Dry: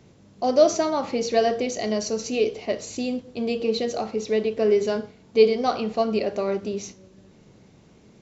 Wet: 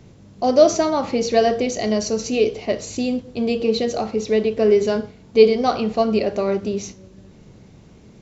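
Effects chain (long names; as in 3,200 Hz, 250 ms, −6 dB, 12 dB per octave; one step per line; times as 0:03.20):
low-shelf EQ 120 Hz +9.5 dB
level +3.5 dB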